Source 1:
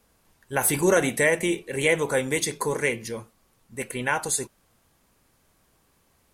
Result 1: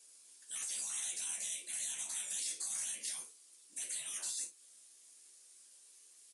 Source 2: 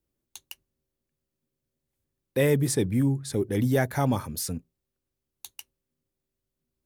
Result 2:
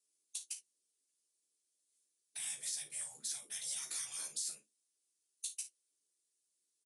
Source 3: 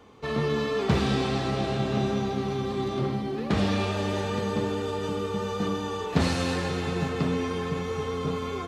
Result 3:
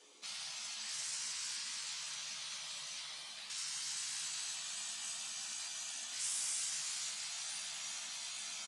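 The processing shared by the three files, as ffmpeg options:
-filter_complex "[0:a]afftfilt=real='hypot(re,im)*cos(2*PI*random(0))':imag='hypot(re,im)*sin(2*PI*random(1))':win_size=512:overlap=0.75,highpass=f=340:w=0.5412,highpass=f=340:w=1.3066,equalizer=f=950:w=0.4:g=-14.5,acompressor=threshold=-41dB:ratio=4,alimiter=level_in=14dB:limit=-24dB:level=0:latency=1:release=14,volume=-14dB,afftfilt=real='re*lt(hypot(re,im),0.00447)':imag='im*lt(hypot(re,im),0.00447)':win_size=1024:overlap=0.75,crystalizer=i=7:c=0,asplit=2[a][b];[b]adelay=14,volume=-5dB[c];[a][c]amix=inputs=2:normalize=0,asplit=2[d][e];[e]aecho=0:1:33|56:0.299|0.211[f];[d][f]amix=inputs=2:normalize=0,aresample=22050,aresample=44100"

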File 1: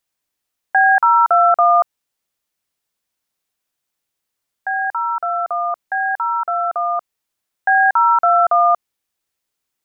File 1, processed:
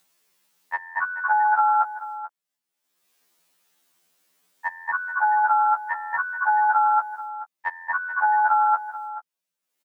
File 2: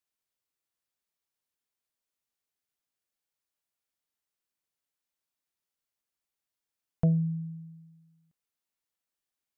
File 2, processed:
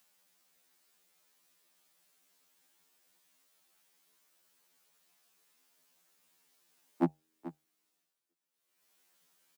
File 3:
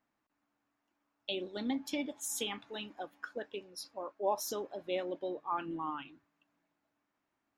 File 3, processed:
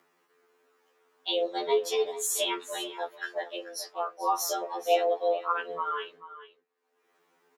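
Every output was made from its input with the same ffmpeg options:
-filter_complex "[0:a]agate=range=-33dB:threshold=-53dB:ratio=3:detection=peak,asplit=2[a][b];[b]acompressor=threshold=-28dB:ratio=6,volume=1dB[c];[a][c]amix=inputs=2:normalize=0,alimiter=limit=-11dB:level=0:latency=1:release=11,acompressor=mode=upward:threshold=-41dB:ratio=2.5,afreqshift=150,aecho=1:1:435:0.188,afftfilt=real='re*2*eq(mod(b,4),0)':imag='im*2*eq(mod(b,4),0)':win_size=2048:overlap=0.75,volume=4dB"

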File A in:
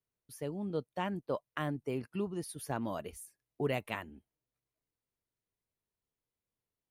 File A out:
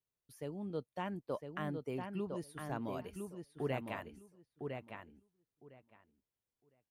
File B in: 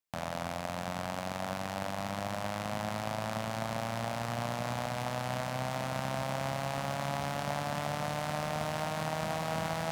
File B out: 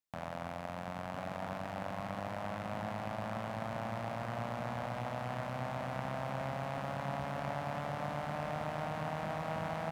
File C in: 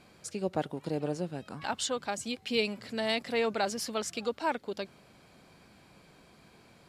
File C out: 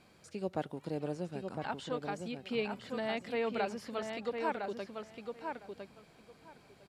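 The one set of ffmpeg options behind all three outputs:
-filter_complex "[0:a]acrossover=split=2800[a][b];[b]acompressor=threshold=-50dB:ratio=4:attack=1:release=60[c];[a][c]amix=inputs=2:normalize=0,asplit=2[d][e];[e]adelay=1007,lowpass=f=4k:p=1,volume=-5dB,asplit=2[f][g];[g]adelay=1007,lowpass=f=4k:p=1,volume=0.16,asplit=2[h][i];[i]adelay=1007,lowpass=f=4k:p=1,volume=0.16[j];[d][f][h][j]amix=inputs=4:normalize=0,volume=-4.5dB"

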